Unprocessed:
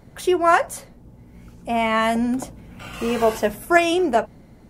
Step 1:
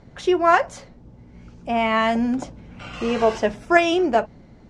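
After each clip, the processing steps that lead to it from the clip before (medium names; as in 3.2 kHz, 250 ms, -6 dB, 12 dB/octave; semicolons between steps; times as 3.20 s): low-pass 6.4 kHz 24 dB/octave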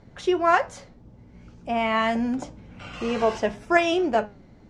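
flange 1.9 Hz, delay 9.2 ms, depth 1.6 ms, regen +81%; trim +1.5 dB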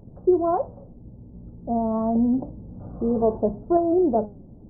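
Gaussian low-pass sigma 13 samples; trim +6 dB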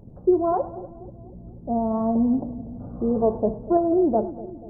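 two-band feedback delay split 680 Hz, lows 242 ms, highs 102 ms, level -15 dB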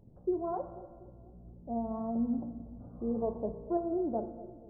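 feedback comb 58 Hz, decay 1.6 s, harmonics all, mix 70%; trim -3.5 dB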